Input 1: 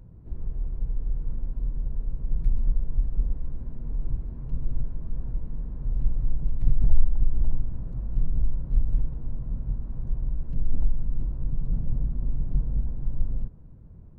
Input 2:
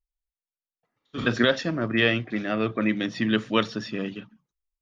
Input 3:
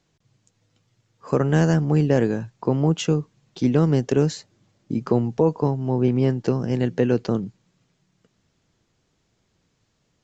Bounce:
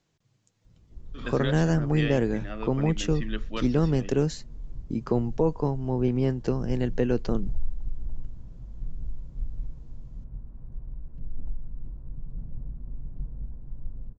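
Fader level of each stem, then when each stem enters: −10.0, −11.5, −5.0 decibels; 0.65, 0.00, 0.00 seconds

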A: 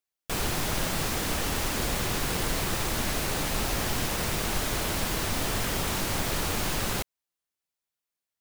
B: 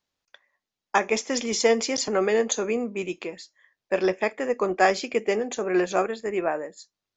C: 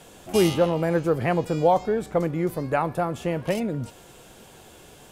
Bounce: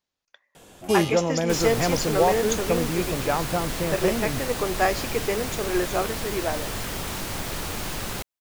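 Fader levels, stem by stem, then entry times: −2.0, −2.5, −1.5 decibels; 1.20, 0.00, 0.55 seconds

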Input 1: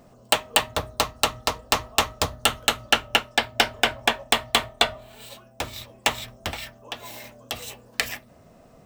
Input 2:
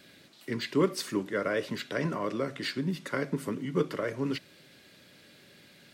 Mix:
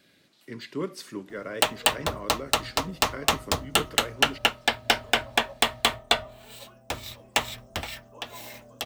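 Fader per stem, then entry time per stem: −2.0, −6.0 decibels; 1.30, 0.00 seconds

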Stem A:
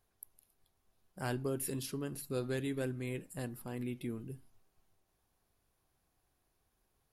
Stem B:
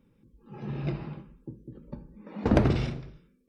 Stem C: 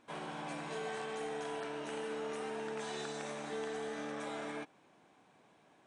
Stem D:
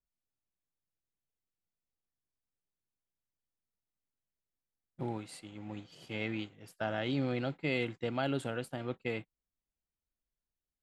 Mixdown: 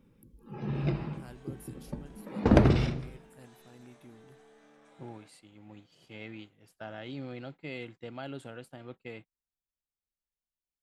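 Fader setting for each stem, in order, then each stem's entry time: −13.5, +1.5, −18.5, −7.5 decibels; 0.00, 0.00, 0.65, 0.00 seconds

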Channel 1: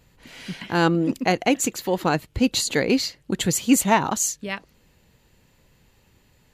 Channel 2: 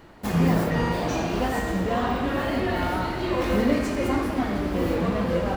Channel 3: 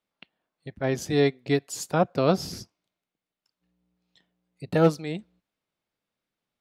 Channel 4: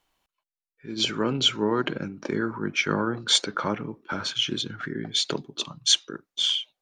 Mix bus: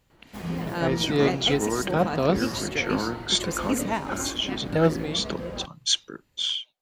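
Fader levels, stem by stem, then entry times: −10.0, −10.5, −1.0, −3.0 decibels; 0.00, 0.10, 0.00, 0.00 seconds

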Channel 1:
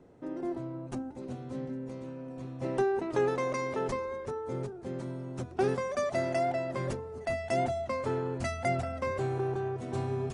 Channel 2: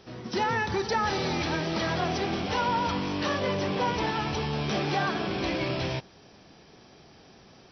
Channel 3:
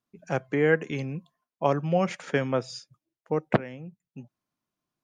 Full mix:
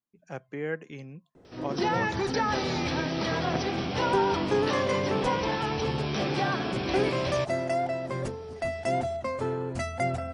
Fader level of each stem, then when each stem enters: +1.5, −1.0, −10.5 decibels; 1.35, 1.45, 0.00 seconds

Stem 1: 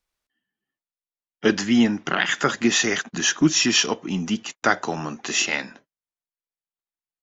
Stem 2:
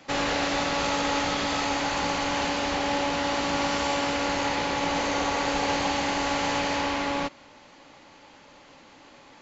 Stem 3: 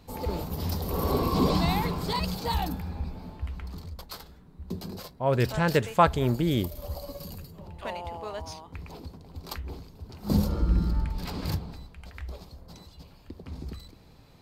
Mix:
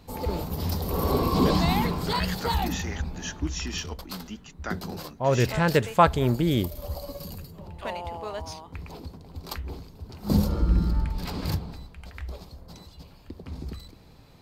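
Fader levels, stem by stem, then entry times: −15.0 dB, muted, +2.0 dB; 0.00 s, muted, 0.00 s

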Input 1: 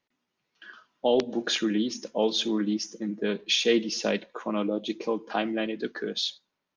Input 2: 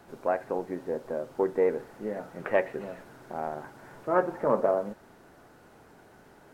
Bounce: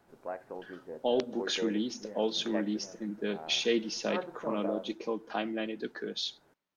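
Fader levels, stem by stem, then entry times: −5.5, −11.5 decibels; 0.00, 0.00 seconds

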